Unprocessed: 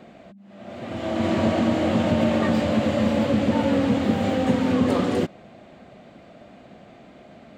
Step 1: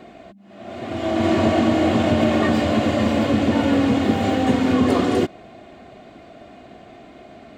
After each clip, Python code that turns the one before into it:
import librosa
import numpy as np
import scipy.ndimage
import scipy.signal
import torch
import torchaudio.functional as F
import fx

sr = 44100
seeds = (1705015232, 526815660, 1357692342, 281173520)

y = x + 0.43 * np.pad(x, (int(2.8 * sr / 1000.0), 0))[:len(x)]
y = y * 10.0 ** (3.5 / 20.0)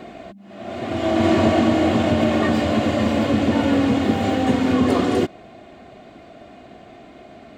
y = fx.rider(x, sr, range_db=10, speed_s=2.0)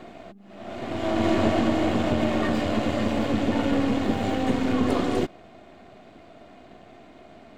y = np.where(x < 0.0, 10.0 ** (-7.0 / 20.0) * x, x)
y = y * 10.0 ** (-3.0 / 20.0)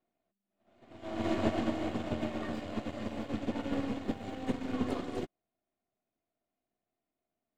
y = fx.upward_expand(x, sr, threshold_db=-42.0, expansion=2.5)
y = y * 10.0 ** (-6.0 / 20.0)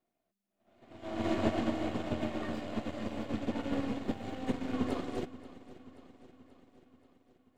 y = fx.echo_feedback(x, sr, ms=532, feedback_pct=59, wet_db=-17)